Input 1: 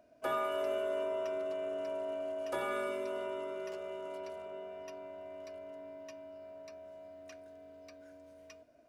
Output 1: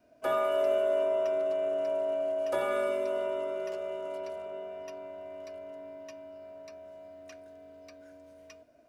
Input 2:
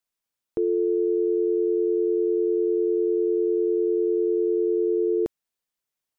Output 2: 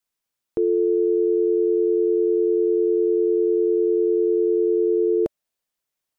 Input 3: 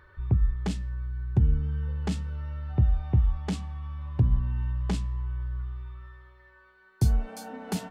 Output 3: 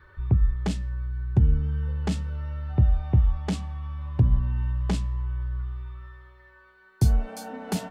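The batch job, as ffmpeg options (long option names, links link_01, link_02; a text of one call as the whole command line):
ffmpeg -i in.wav -af "adynamicequalizer=threshold=0.00447:dfrequency=600:dqfactor=4.1:tfrequency=600:tqfactor=4.1:attack=5:release=100:ratio=0.375:range=3.5:mode=boostabove:tftype=bell,volume=2.5dB" out.wav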